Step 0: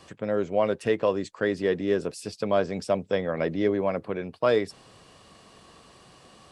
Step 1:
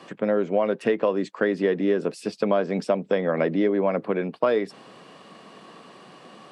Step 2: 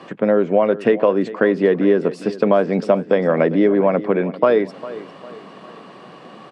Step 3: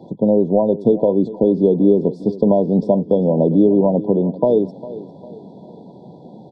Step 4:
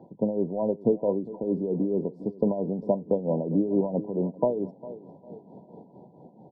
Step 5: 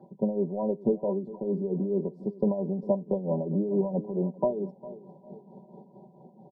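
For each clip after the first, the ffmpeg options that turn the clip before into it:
-af "highpass=f=180:w=0.5412,highpass=f=180:w=1.3066,bass=f=250:g=3,treble=f=4k:g=-11,acompressor=threshold=-25dB:ratio=5,volume=7dB"
-af "lowpass=f=2.5k:p=1,aecho=1:1:402|804|1206|1608:0.15|0.0628|0.0264|0.0111,volume=7dB"
-af "aemphasis=mode=reproduction:type=riaa,afftfilt=real='re*(1-between(b*sr/4096,1000,3300))':imag='im*(1-between(b*sr/4096,1000,3300))':win_size=4096:overlap=0.75,volume=-3dB"
-af "highshelf=f=2.2k:t=q:w=3:g=-12,tremolo=f=4.5:d=0.69,dynaudnorm=f=300:g=7:m=6dB,volume=-8.5dB"
-af "aecho=1:1:5.2:0.78,volume=-4.5dB"

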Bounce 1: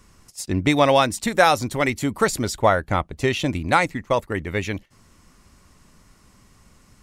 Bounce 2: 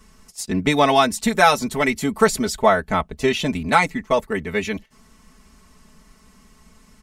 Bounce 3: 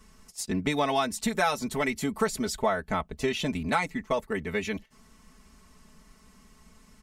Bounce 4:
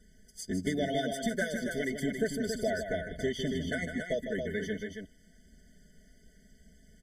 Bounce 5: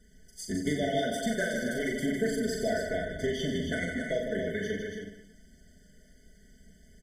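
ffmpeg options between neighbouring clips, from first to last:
-af "aecho=1:1:4.6:0.99,volume=-1dB"
-af "acompressor=threshold=-22dB:ratio=2,volume=-4.5dB"
-filter_complex "[0:a]flanger=delay=0.2:depth=3.3:regen=-66:speed=0.9:shape=triangular,asplit=2[a][b];[b]aecho=0:1:154.5|277:0.398|0.501[c];[a][c]amix=inputs=2:normalize=0,afftfilt=real='re*eq(mod(floor(b*sr/1024/730),2),0)':imag='im*eq(mod(floor(b*sr/1024/730),2),0)':win_size=1024:overlap=0.75"
-af "aecho=1:1:40|90|152.5|230.6|328.3:0.631|0.398|0.251|0.158|0.1"

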